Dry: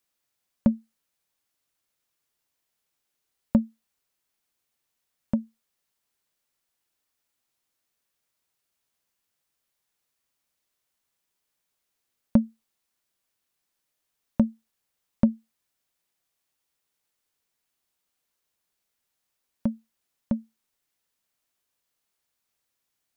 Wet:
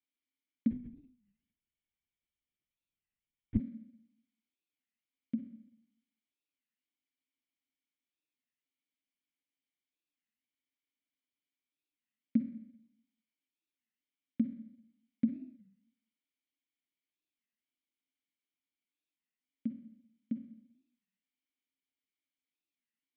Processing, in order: dynamic EQ 1200 Hz, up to -7 dB, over -44 dBFS, Q 0.81; vowel filter i; on a send at -7.5 dB: reverb RT60 0.80 s, pre-delay 43 ms; 0.71–3.6 on the sum: LPC vocoder at 8 kHz whisper; record warp 33 1/3 rpm, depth 250 cents

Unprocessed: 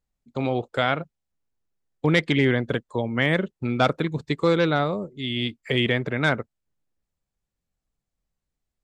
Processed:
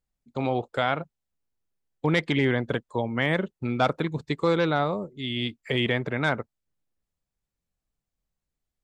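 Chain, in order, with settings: dynamic EQ 890 Hz, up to +5 dB, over -38 dBFS, Q 1.8; in parallel at -2 dB: limiter -11.5 dBFS, peak gain reduction 6.5 dB; on the sum: gain -7.5 dB

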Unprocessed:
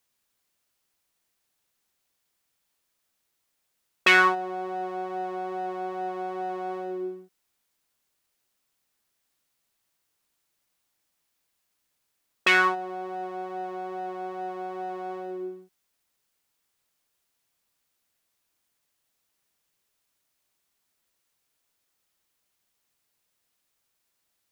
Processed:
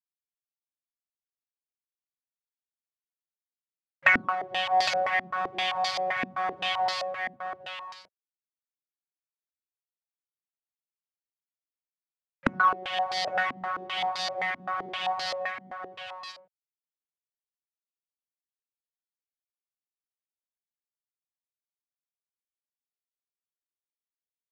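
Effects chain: half-waves squared off; compressor 16:1, threshold -22 dBFS, peak gain reduction 13 dB; FFT band-reject 160–540 Hz; companded quantiser 4-bit; HPF 100 Hz 24 dB/oct; on a send: echo 0.81 s -6.5 dB; on the sum: stepped low-pass 7.7 Hz 250–4600 Hz

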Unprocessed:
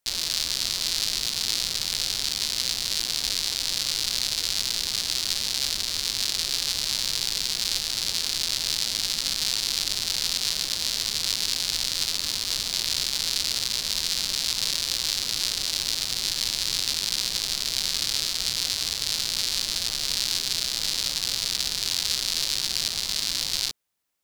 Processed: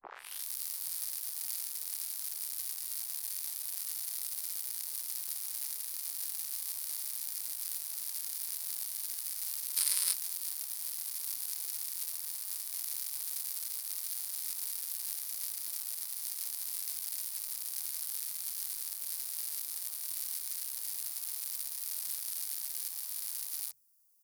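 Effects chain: tape start at the beginning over 0.47 s; pre-emphasis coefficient 0.97; notches 50/100/150 Hz; spectral gain 9.77–10.13, 920–11000 Hz +12 dB; EQ curve 120 Hz 0 dB, 500 Hz -7 dB, 830 Hz +9 dB, 2100 Hz -8 dB, 6700 Hz -19 dB, 9500 Hz +5 dB; reverse; upward compressor, threshold -51 dBFS; reverse; harmoniser -12 st -10 dB, +5 st -6 dB; gain -7.5 dB

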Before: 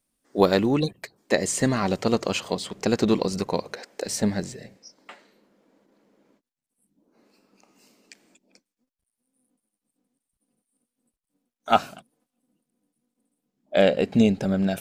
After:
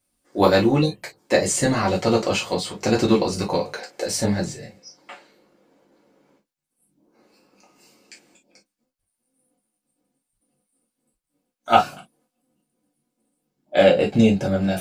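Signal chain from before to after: non-linear reverb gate 80 ms falling, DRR -4 dB; gain -1 dB

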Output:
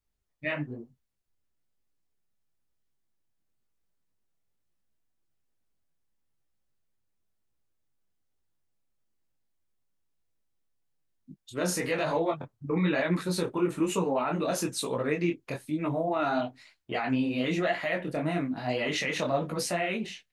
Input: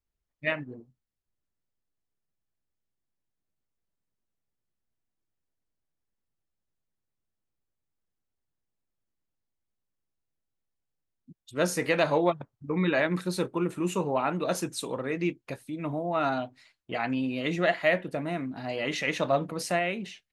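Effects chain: limiter -21.5 dBFS, peak gain reduction 10.5 dB; detuned doubles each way 37 cents; gain +6.5 dB

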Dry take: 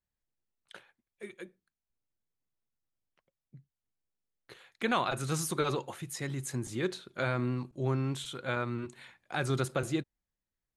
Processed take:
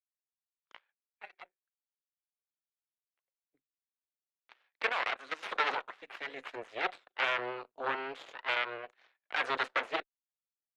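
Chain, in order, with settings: added harmonics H 7 -18 dB, 8 -10 dB, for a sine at -15.5 dBFS; LPF 4400 Hz 12 dB/oct; tilt +3.5 dB/oct; 4.89–5.43 level quantiser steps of 15 dB; three-band isolator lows -18 dB, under 380 Hz, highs -23 dB, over 2900 Hz

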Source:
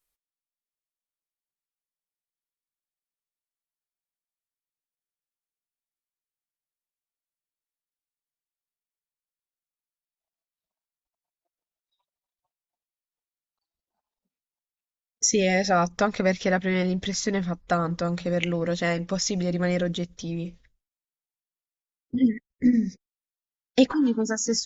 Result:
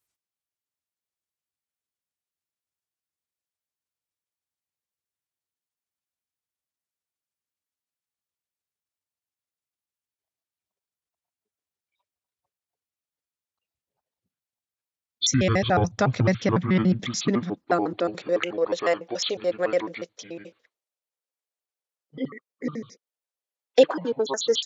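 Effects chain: trilling pitch shifter -8.5 st, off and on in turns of 72 ms; high-pass sweep 80 Hz -> 490 Hz, 15.68–18.52

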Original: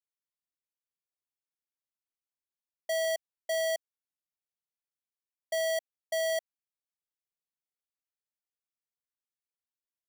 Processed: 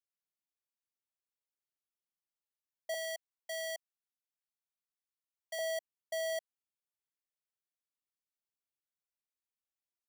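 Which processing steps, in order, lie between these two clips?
2.94–5.59 HPF 720 Hz 24 dB/oct; gain -6 dB

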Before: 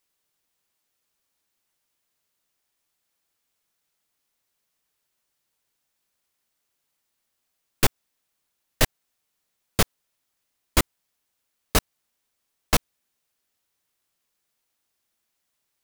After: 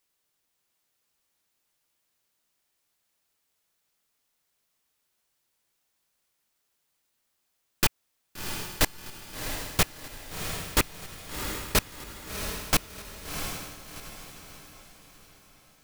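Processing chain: rattling part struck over -27 dBFS, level -16 dBFS; wavefolder -13.5 dBFS; diffused feedback echo 0.709 s, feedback 43%, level -6 dB

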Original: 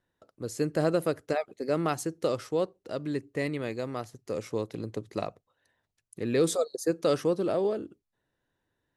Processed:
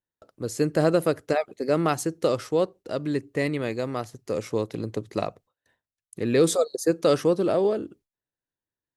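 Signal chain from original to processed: gate with hold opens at -52 dBFS; gain +5 dB

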